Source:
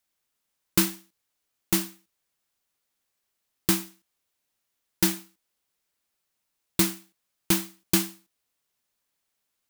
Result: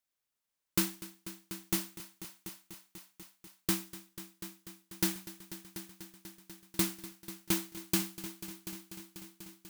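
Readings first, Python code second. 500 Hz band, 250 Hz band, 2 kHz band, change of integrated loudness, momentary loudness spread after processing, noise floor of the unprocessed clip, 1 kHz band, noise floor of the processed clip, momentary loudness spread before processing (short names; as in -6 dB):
-7.5 dB, -7.5 dB, -7.5 dB, -10.5 dB, 17 LU, -80 dBFS, -7.5 dB, under -85 dBFS, 14 LU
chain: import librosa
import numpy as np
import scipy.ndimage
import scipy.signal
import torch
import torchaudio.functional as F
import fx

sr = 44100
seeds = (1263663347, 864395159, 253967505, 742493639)

y = fx.mod_noise(x, sr, seeds[0], snr_db=18)
y = fx.echo_heads(y, sr, ms=245, heads='all three', feedback_pct=65, wet_db=-17)
y = F.gain(torch.from_numpy(y), -8.0).numpy()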